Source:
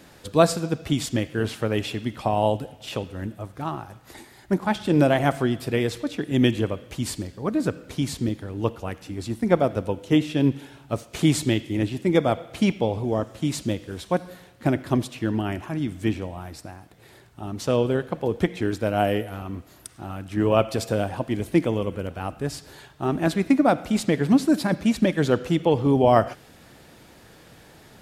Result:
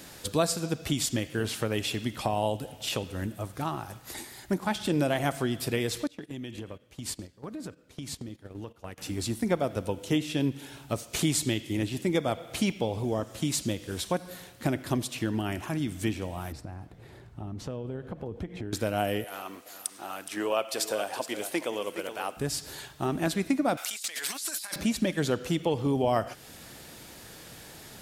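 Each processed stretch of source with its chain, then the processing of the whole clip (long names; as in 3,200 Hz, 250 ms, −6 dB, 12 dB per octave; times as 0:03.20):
0:06.07–0:08.98: noise gate −32 dBFS, range −18 dB + high-shelf EQ 5,700 Hz −6 dB + downward compressor 10 to 1, threshold −35 dBFS
0:16.52–0:18.73: low-shelf EQ 160 Hz +8.5 dB + downward compressor 4 to 1, threshold −34 dBFS + low-pass filter 1,100 Hz 6 dB per octave
0:19.24–0:22.37: high-pass filter 480 Hz + single-tap delay 417 ms −13 dB
0:23.77–0:24.76: high-pass filter 1,300 Hz + high-shelf EQ 4,100 Hz +9.5 dB + compressor whose output falls as the input rises −41 dBFS
whole clip: high-shelf EQ 3,600 Hz +10.5 dB; downward compressor 2 to 1, threshold −29 dBFS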